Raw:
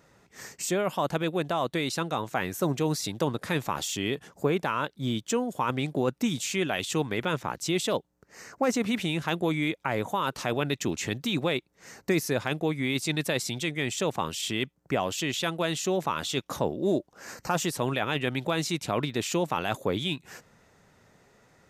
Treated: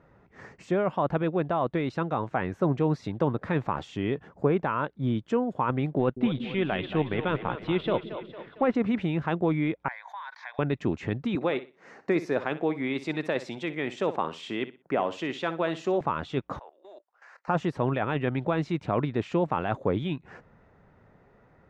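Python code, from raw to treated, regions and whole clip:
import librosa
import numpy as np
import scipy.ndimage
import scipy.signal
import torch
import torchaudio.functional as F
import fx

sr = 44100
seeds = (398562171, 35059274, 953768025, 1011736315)

y = fx.chain(x, sr, fx.law_mismatch(coded='A'),
    fx.high_shelf_res(hz=4800.0, db=-12.0, q=3.0),
    fx.echo_split(split_hz=370.0, low_ms=174, high_ms=227, feedback_pct=52, wet_db=-10), at=(5.99, 8.75))
y = fx.chain(y, sr, fx.highpass(hz=1200.0, slope=24),
    fx.fixed_phaser(hz=1900.0, stages=8),
    fx.pre_swell(db_per_s=80.0), at=(9.88, 10.59))
y = fx.chain(y, sr, fx.highpass(hz=250.0, slope=12),
    fx.high_shelf(hz=3500.0, db=6.0),
    fx.echo_feedback(ms=61, feedback_pct=25, wet_db=-14), at=(11.35, 16.01))
y = fx.chain(y, sr, fx.bessel_highpass(hz=1100.0, order=4),
    fx.level_steps(step_db=16), at=(16.59, 17.48))
y = scipy.signal.sosfilt(scipy.signal.butter(2, 1600.0, 'lowpass', fs=sr, output='sos'), y)
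y = fx.low_shelf(y, sr, hz=74.0, db=7.5)
y = y * 10.0 ** (1.5 / 20.0)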